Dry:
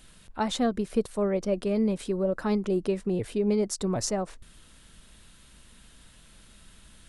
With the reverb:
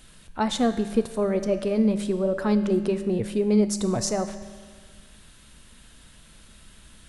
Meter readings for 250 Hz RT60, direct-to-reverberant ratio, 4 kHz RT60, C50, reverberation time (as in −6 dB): 1.7 s, 9.0 dB, 1.6 s, 11.0 dB, 1.7 s